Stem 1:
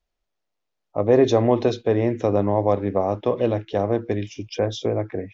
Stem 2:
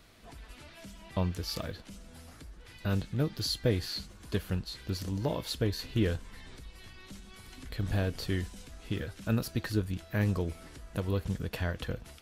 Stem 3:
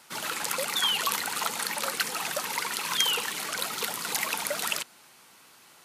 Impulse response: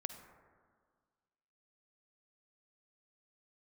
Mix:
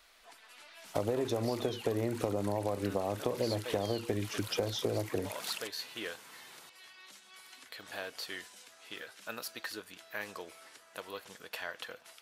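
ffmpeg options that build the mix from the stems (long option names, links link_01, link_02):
-filter_complex "[0:a]acompressor=threshold=-21dB:ratio=6,volume=2.5dB[link_01];[1:a]highpass=750,volume=-1.5dB,asplit=2[link_02][link_03];[link_03]volume=-14dB[link_04];[2:a]acompressor=threshold=-38dB:ratio=6,adelay=850,volume=-0.5dB[link_05];[3:a]atrim=start_sample=2205[link_06];[link_04][link_06]afir=irnorm=-1:irlink=0[link_07];[link_01][link_02][link_05][link_07]amix=inputs=4:normalize=0,acompressor=threshold=-32dB:ratio=3"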